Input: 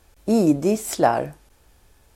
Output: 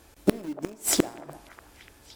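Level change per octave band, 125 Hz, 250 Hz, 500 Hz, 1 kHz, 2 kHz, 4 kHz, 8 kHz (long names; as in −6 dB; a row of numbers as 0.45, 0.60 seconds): −8.0, −8.5, −10.0, −16.5, −5.5, +3.5, +4.0 decibels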